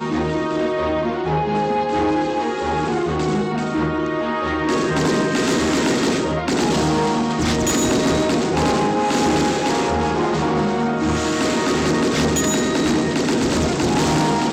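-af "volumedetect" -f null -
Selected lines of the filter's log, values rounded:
mean_volume: -19.0 dB
max_volume: -10.0 dB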